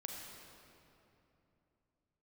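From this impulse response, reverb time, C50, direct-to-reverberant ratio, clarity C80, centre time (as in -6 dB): 3.0 s, 1.0 dB, 0.0 dB, 2.0 dB, 0.112 s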